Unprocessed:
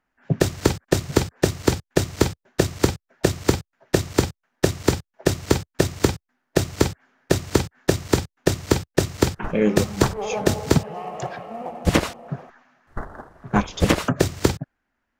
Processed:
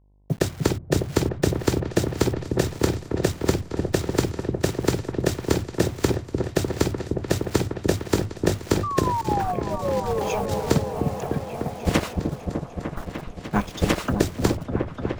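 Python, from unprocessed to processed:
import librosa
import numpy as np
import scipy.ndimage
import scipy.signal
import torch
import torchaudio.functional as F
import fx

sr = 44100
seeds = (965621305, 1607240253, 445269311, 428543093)

y = fx.delta_hold(x, sr, step_db=-36.0)
y = fx.spec_paint(y, sr, seeds[0], shape='fall', start_s=8.83, length_s=1.36, low_hz=440.0, high_hz=1200.0, level_db=-24.0)
y = fx.over_compress(y, sr, threshold_db=-23.0, ratio=-0.5, at=(9.0, 10.71))
y = fx.echo_opening(y, sr, ms=300, hz=400, octaves=1, feedback_pct=70, wet_db=-3)
y = fx.dmg_buzz(y, sr, base_hz=50.0, harmonics=21, level_db=-55.0, tilt_db=-8, odd_only=False)
y = F.gain(torch.from_numpy(y), -3.5).numpy()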